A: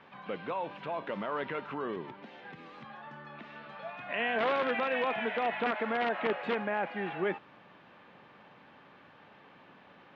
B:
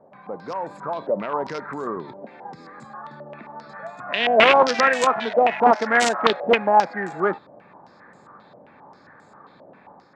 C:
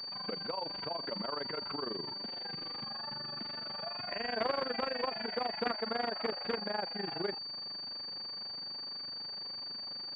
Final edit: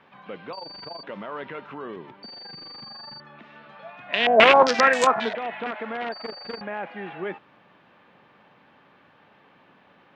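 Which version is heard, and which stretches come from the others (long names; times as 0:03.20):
A
0:00.53–0:01.03: punch in from C
0:02.23–0:03.20: punch in from C
0:04.13–0:05.35: punch in from B
0:06.12–0:06.61: punch in from C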